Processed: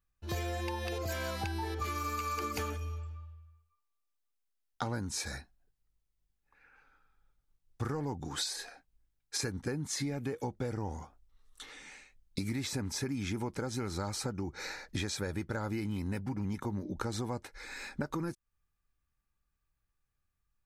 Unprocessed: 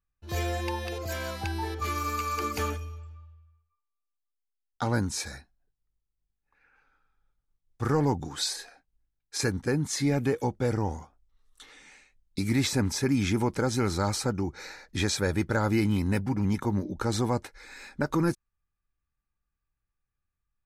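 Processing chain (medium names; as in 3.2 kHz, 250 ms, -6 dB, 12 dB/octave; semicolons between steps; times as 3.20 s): compression 12:1, threshold -34 dBFS, peak gain reduction 14 dB; trim +2 dB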